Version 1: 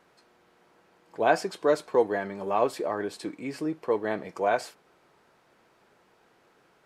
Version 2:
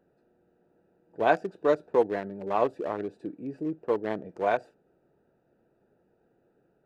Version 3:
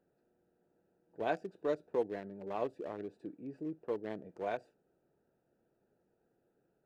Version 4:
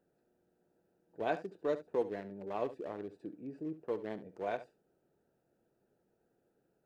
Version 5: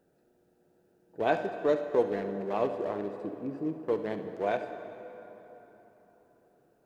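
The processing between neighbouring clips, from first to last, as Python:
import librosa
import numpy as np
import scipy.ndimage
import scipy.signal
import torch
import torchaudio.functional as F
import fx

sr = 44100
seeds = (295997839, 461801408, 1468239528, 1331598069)

y1 = fx.wiener(x, sr, points=41)
y2 = fx.dynamic_eq(y1, sr, hz=1100.0, q=0.91, threshold_db=-38.0, ratio=4.0, max_db=-6)
y2 = F.gain(torch.from_numpy(y2), -8.5).numpy()
y3 = y2 + 10.0 ** (-14.0 / 20.0) * np.pad(y2, (int(70 * sr / 1000.0), 0))[:len(y2)]
y4 = fx.rev_plate(y3, sr, seeds[0], rt60_s=3.9, hf_ratio=0.65, predelay_ms=0, drr_db=7.5)
y4 = F.gain(torch.from_numpy(y4), 7.0).numpy()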